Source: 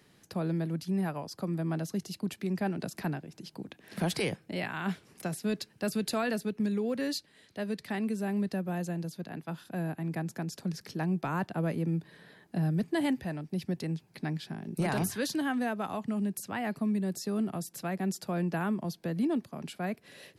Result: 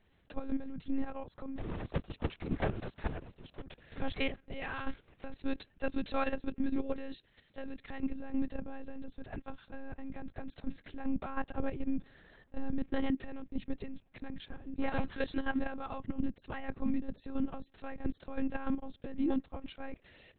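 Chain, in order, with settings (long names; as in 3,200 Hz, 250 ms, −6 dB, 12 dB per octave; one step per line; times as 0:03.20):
0:01.57–0:03.62: sub-harmonics by changed cycles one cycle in 3, inverted
one-pitch LPC vocoder at 8 kHz 270 Hz
output level in coarse steps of 10 dB
level +1 dB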